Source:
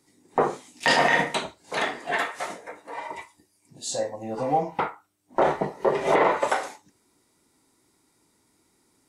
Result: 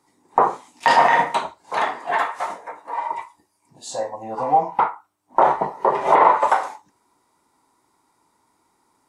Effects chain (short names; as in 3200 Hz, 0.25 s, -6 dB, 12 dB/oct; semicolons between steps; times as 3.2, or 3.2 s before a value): bell 970 Hz +15 dB 1.1 oct; gain -3.5 dB